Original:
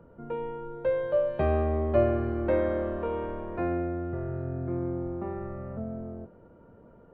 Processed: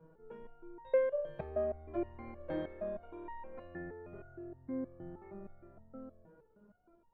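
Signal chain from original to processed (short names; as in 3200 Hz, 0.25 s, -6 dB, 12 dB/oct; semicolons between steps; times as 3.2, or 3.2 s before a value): stepped resonator 6.4 Hz 160–930 Hz; gain +4 dB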